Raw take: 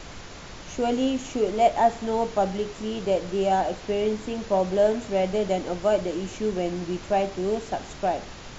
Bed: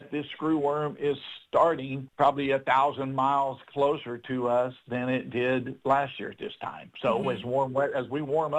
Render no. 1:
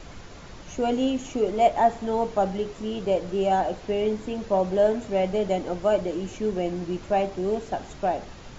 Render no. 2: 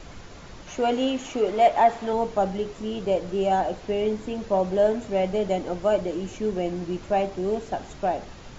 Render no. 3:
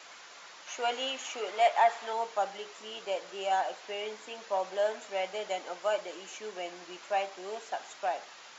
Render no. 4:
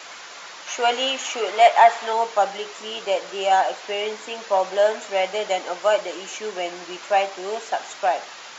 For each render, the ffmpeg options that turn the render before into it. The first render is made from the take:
-af "afftdn=nr=6:nf=-41"
-filter_complex "[0:a]asettb=1/sr,asplit=3[s0][s1][s2];[s0]atrim=end=0.674[s3];[s1]atrim=start=0.67:end=2.13,asetpts=PTS-STARTPTS,afade=t=in:d=0.004:c=qsin,afade=t=out:st=1.456:d=0.004:c=qsin,asplit=2[s4][s5];[s5]highpass=f=720:p=1,volume=3.16,asoftclip=type=tanh:threshold=0.422[s6];[s4][s6]amix=inputs=2:normalize=0,lowpass=f=3800:p=1,volume=0.501[s7];[s2]atrim=start=2.126[s8];[s3][s7]acrossfade=d=0.004:c1=hsin:c2=qsin[s9];[s9][s8]acrossfade=d=0.004:c1=qsin:c2=hsin"
-af "highpass=970"
-af "volume=3.55"

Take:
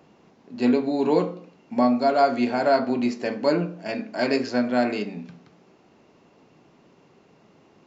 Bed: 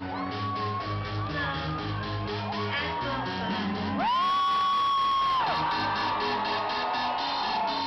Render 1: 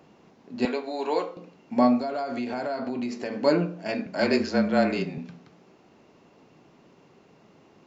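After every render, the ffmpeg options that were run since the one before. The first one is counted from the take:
-filter_complex "[0:a]asettb=1/sr,asplit=3[s0][s1][s2];[s0]atrim=end=0.654[s3];[s1]atrim=start=0.65:end=1.37,asetpts=PTS-STARTPTS,afade=t=in:d=0.004:c=qsin,afade=t=out:st=0.716:d=0.004:c=qsin,highpass=580[s4];[s2]atrim=start=1.366[s5];[s3][s4]acrossfade=d=0.004:c1=hsin:c2=qsin[s6];[s6][s5]acrossfade=d=0.004:c1=qsin:c2=hsin,asettb=1/sr,asplit=3[s7][s8][s9];[s7]atrim=end=1.994[s10];[s8]atrim=start=1.99:end=3.39,asetpts=PTS-STARTPTS,afade=t=in:d=0.004:c=qsin,afade=t=out:st=1.396:d=0.004:c=qsin,acompressor=threshold=0.0501:ratio=10:attack=3.2:release=140:knee=1:detection=peak[s11];[s9]atrim=start=3.386[s12];[s10][s11]acrossfade=d=0.004:c1=hsin:c2=qsin[s13];[s13][s12]acrossfade=d=0.004:c1=qsin:c2=hsin,asettb=1/sr,asplit=3[s14][s15][s16];[s14]atrim=end=4.064[s17];[s15]atrim=start=4.06:end=5.18,asetpts=PTS-STARTPTS,afade=t=in:d=0.004:c=qsin,afade=t=out:st=1.116:d=0.004:c=qsin,afreqshift=-28[s18];[s16]atrim=start=5.176[s19];[s17][s18]acrossfade=d=0.004:c1=hsin:c2=qsin[s20];[s20][s19]acrossfade=d=0.004:c1=qsin:c2=hsin"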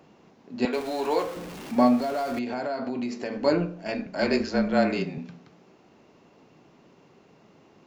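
-filter_complex "[0:a]asettb=1/sr,asplit=3[s0][s1][s2];[s0]atrim=end=0.734[s3];[s1]atrim=start=0.73:end=2.39,asetpts=PTS-STARTPTS,afade=t=in:d=0.004:c=qsin,afade=t=out:st=1.656:d=0.004:c=qsin,aeval=exprs='val(0)+0.5*0.0178*sgn(val(0))':c=same[s4];[s2]atrim=start=2.386[s5];[s3][s4]acrossfade=d=0.004:c1=hsin:c2=qsin[s6];[s6][s5]acrossfade=d=0.004:c1=qsin:c2=hsin,asettb=1/sr,asplit=3[s7][s8][s9];[s7]atrim=end=3.374[s10];[s8]atrim=start=3.37:end=4.75,asetpts=PTS-STARTPTS,afade=t=in:d=0.004:c=qsin,afade=t=out:st=1.376:d=0.004:c=qsin,tremolo=f=200:d=0.261[s11];[s9]atrim=start=4.746[s12];[s10][s11]acrossfade=d=0.004:c1=hsin:c2=qsin[s13];[s13][s12]acrossfade=d=0.004:c1=qsin:c2=hsin"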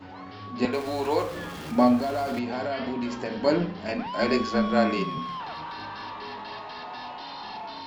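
-filter_complex "[1:a]volume=0.335[s0];[0:a][s0]amix=inputs=2:normalize=0"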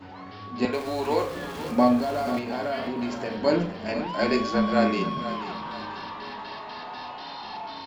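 -filter_complex "[0:a]asplit=2[s0][s1];[s1]adelay=42,volume=0.224[s2];[s0][s2]amix=inputs=2:normalize=0,aecho=1:1:486|972|1458|1944:0.251|0.103|0.0422|0.0173"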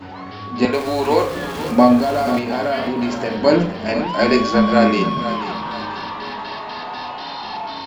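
-af "volume=2.66,alimiter=limit=0.794:level=0:latency=1"

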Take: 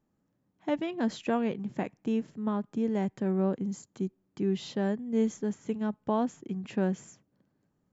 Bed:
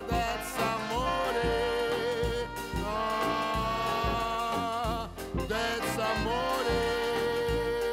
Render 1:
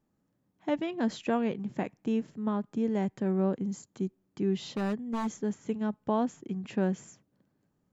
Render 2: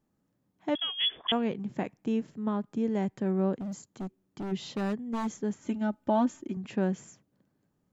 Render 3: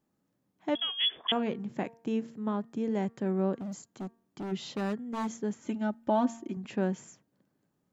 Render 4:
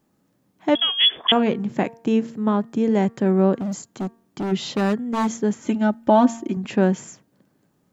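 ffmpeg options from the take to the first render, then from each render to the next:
-filter_complex "[0:a]asettb=1/sr,asplit=3[s0][s1][s2];[s0]atrim=end=4.724[s3];[s1]atrim=start=4.72:end=5.39,asetpts=PTS-STARTPTS,afade=t=in:d=0.004:c=qsin,afade=t=out:st=0.666:d=0.004:c=qsin,aeval=exprs='0.0562*(abs(mod(val(0)/0.0562+3,4)-2)-1)':c=same[s4];[s2]atrim=start=5.386[s5];[s3][s4]acrossfade=d=0.004:c1=hsin:c2=qsin[s6];[s6][s5]acrossfade=d=0.004:c1=qsin:c2=hsin"
-filter_complex "[0:a]asettb=1/sr,asplit=3[s0][s1][s2];[s0]atrim=end=0.754[s3];[s1]atrim=start=0.75:end=1.32,asetpts=PTS-STARTPTS,afade=t=in:d=0.004:c=qsin,afade=t=out:st=0.566:d=0.004:c=qsin,lowpass=f=3100:t=q:w=0.5098,lowpass=f=3100:t=q:w=0.6013,lowpass=f=3100:t=q:w=0.9,lowpass=f=3100:t=q:w=2.563,afreqshift=-3600[s4];[s2]atrim=start=1.316[s5];[s3][s4]acrossfade=d=0.004:c1=hsin:c2=qsin[s6];[s6][s5]acrossfade=d=0.004:c1=qsin:c2=hsin,asplit=3[s7][s8][s9];[s7]afade=t=out:st=3.58:d=0.02[s10];[s8]asoftclip=type=hard:threshold=0.0224,afade=t=in:st=3.58:d=0.02,afade=t=out:st=4.51:d=0.02[s11];[s9]afade=t=in:st=4.51:d=0.02[s12];[s10][s11][s12]amix=inputs=3:normalize=0,asettb=1/sr,asplit=3[s13][s14][s15];[s13]atrim=end=5.624[s16];[s14]atrim=start=5.62:end=6.57,asetpts=PTS-STARTPTS,afade=t=in:d=0.004:c=qsin,afade=t=out:st=0.946:d=0.004:c=qsin,aecho=1:1:3.3:0.92,atrim=end_sample=41895[s17];[s15]atrim=start=6.566[s18];[s16][s17]acrossfade=d=0.004:c1=hsin:c2=qsin[s19];[s19][s18]acrossfade=d=0.004:c1=qsin:c2=hsin"
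-af "lowshelf=f=85:g=-11.5,bandreject=f=229.8:t=h:w=4,bandreject=f=459.6:t=h:w=4,bandreject=f=689.4:t=h:w=4,bandreject=f=919.2:t=h:w=4,bandreject=f=1149:t=h:w=4,bandreject=f=1378.8:t=h:w=4,bandreject=f=1608.6:t=h:w=4,bandreject=f=1838.4:t=h:w=4"
-af "volume=3.76"

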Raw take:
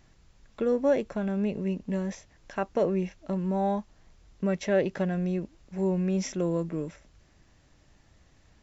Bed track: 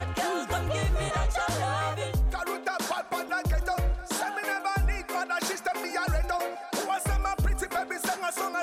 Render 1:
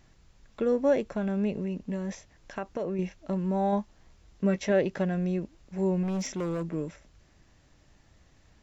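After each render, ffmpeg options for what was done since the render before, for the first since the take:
-filter_complex "[0:a]asettb=1/sr,asplit=3[s0][s1][s2];[s0]atrim=end=1.644[s3];[s1]atrim=start=1.64:end=2.99,asetpts=PTS-STARTPTS,afade=t=in:d=0.004:c=qsin,afade=t=out:st=1.346:d=0.004:c=qsin,acompressor=threshold=0.0398:ratio=6:attack=3.2:release=140:knee=1:detection=peak[s4];[s2]atrim=start=2.986[s5];[s3][s4]acrossfade=d=0.004:c1=hsin:c2=qsin[s6];[s6][s5]acrossfade=d=0.004:c1=qsin:c2=hsin,asettb=1/sr,asplit=3[s7][s8][s9];[s7]atrim=end=3.714[s10];[s8]atrim=start=3.71:end=4.72,asetpts=PTS-STARTPTS,afade=t=in:d=0.004:c=qsin,afade=t=out:st=1.006:d=0.004:c=qsin,asplit=2[s11][s12];[s12]adelay=15,volume=0.398[s13];[s11][s13]amix=inputs=2:normalize=0,atrim=end_sample=44541[s14];[s9]atrim=start=4.716[s15];[s10][s14]acrossfade=d=0.004:c1=hsin:c2=qsin[s16];[s16][s15]acrossfade=d=0.004:c1=qsin:c2=hsin,asettb=1/sr,asplit=3[s17][s18][s19];[s17]atrim=end=6.034[s20];[s18]atrim=start=6.03:end=6.74,asetpts=PTS-STARTPTS,afade=t=in:d=0.004:c=qsin,afade=t=out:st=0.706:d=0.004:c=qsin,asoftclip=type=hard:threshold=0.0422[s21];[s19]atrim=start=6.736[s22];[s20][s21]acrossfade=d=0.004:c1=hsin:c2=qsin[s23];[s23][s22]acrossfade=d=0.004:c1=qsin:c2=hsin"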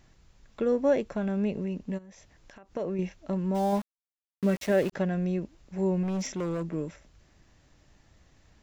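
-filter_complex "[0:a]asplit=3[s0][s1][s2];[s0]afade=t=out:st=1.97:d=0.02[s3];[s1]acompressor=threshold=0.00398:ratio=6:attack=3.2:release=140:knee=1:detection=peak,afade=t=in:st=1.97:d=0.02,afade=t=out:st=2.75:d=0.02[s4];[s2]afade=t=in:st=2.75:d=0.02[s5];[s3][s4][s5]amix=inputs=3:normalize=0,asplit=3[s6][s7][s8];[s6]afade=t=out:st=3.54:d=0.02[s9];[s7]aeval=exprs='val(0)*gte(abs(val(0)),0.0141)':c=same,afade=t=in:st=3.54:d=0.02,afade=t=out:st=4.92:d=0.02[s10];[s8]afade=t=in:st=4.92:d=0.02[s11];[s9][s10][s11]amix=inputs=3:normalize=0"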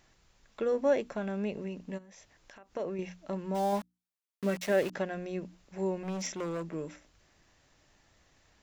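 -af "lowshelf=f=320:g=-9,bandreject=f=60:t=h:w=6,bandreject=f=120:t=h:w=6,bandreject=f=180:t=h:w=6,bandreject=f=240:t=h:w=6,bandreject=f=300:t=h:w=6"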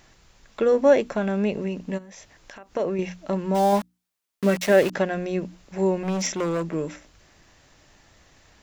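-af "volume=3.16"

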